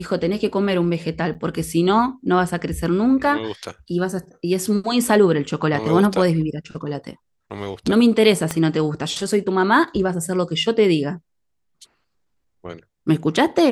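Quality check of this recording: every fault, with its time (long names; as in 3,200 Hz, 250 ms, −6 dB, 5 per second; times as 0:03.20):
0:01.34–0:01.35: drop-out 8.8 ms
0:08.51: click −8 dBFS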